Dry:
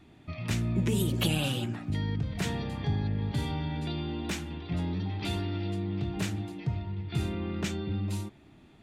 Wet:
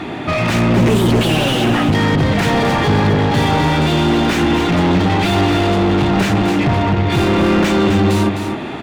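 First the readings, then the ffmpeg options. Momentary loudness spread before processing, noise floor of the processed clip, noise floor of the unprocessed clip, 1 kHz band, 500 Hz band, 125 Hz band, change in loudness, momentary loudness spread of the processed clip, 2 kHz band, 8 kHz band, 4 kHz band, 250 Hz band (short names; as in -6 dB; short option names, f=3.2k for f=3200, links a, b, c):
7 LU, -24 dBFS, -56 dBFS, +25.0 dB, +22.0 dB, +14.0 dB, +17.5 dB, 2 LU, +21.0 dB, +12.5 dB, +17.0 dB, +19.0 dB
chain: -filter_complex "[0:a]asplit=2[a][b];[b]highpass=f=720:p=1,volume=38dB,asoftclip=type=tanh:threshold=-14.5dB[c];[a][c]amix=inputs=2:normalize=0,lowpass=f=1.2k:p=1,volume=-6dB,aecho=1:1:258:0.447,volume=8.5dB"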